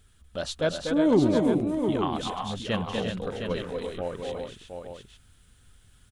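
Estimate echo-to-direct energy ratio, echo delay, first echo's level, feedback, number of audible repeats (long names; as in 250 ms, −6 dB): 0.0 dB, 242 ms, −4.0 dB, repeats not evenly spaced, 4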